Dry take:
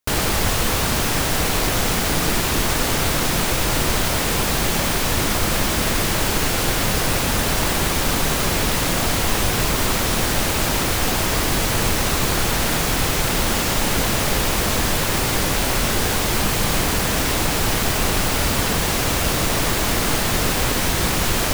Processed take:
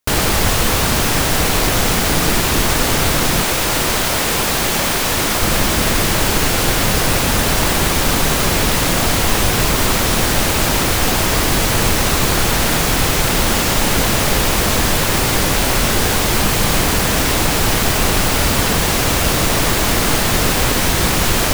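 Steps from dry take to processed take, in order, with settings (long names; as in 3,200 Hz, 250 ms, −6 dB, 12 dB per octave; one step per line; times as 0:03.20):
0:03.42–0:05.43: low-shelf EQ 210 Hz −7 dB
level +4.5 dB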